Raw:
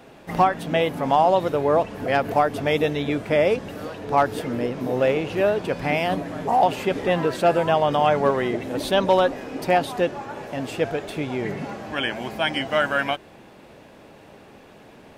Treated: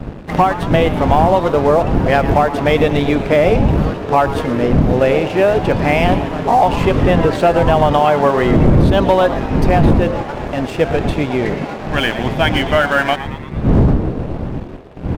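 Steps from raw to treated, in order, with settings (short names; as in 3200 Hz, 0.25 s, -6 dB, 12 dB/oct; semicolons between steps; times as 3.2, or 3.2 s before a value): wind noise 200 Hz -21 dBFS; high shelf 5700 Hz -11.5 dB; de-hum 104.4 Hz, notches 5; sample leveller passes 2; compressor, threshold -10 dBFS, peak gain reduction 9 dB; frequency-shifting echo 0.114 s, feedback 56%, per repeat +120 Hz, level -14 dB; gain +2 dB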